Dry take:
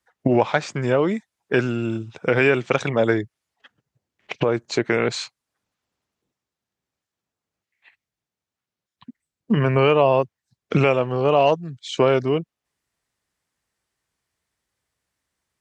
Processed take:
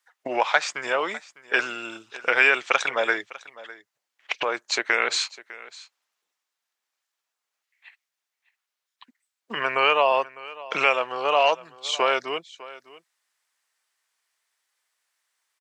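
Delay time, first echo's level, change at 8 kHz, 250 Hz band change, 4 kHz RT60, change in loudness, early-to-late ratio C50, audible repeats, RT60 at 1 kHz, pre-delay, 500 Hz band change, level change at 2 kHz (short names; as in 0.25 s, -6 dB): 0.603 s, -19.0 dB, +4.5 dB, -16.5 dB, none, -2.5 dB, none, 1, none, none, -7.0 dB, +4.0 dB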